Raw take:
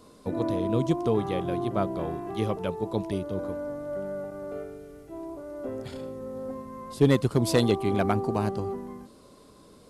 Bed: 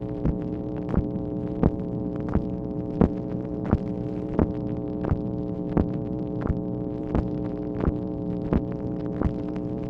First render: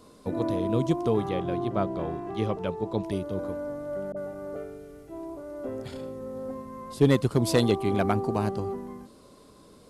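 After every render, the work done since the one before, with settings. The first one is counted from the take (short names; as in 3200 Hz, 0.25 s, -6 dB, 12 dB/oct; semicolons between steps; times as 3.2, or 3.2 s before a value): 1.29–3.04 air absorption 53 m; 4.12–4.56 dispersion highs, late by 47 ms, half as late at 540 Hz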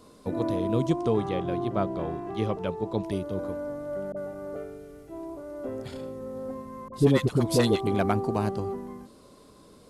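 0.9–1.47 steep low-pass 10000 Hz; 6.88–7.87 dispersion highs, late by 55 ms, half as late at 640 Hz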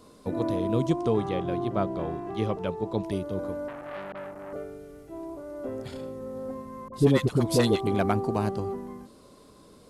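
3.68–4.53 core saturation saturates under 1400 Hz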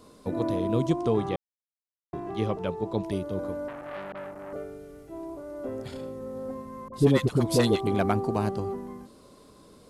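1.36–2.13 mute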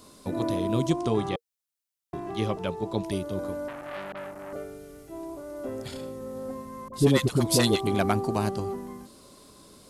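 high shelf 2900 Hz +9 dB; notch 470 Hz, Q 12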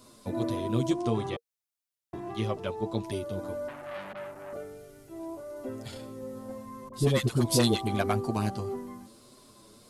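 flange 1.6 Hz, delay 7.9 ms, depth 1.3 ms, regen -1%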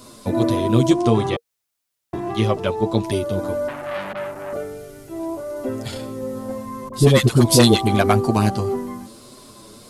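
gain +11.5 dB; limiter -2 dBFS, peak gain reduction 2 dB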